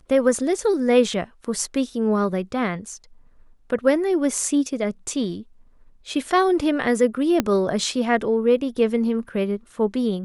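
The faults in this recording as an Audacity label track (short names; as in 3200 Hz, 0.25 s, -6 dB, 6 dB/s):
7.400000	7.400000	pop -5 dBFS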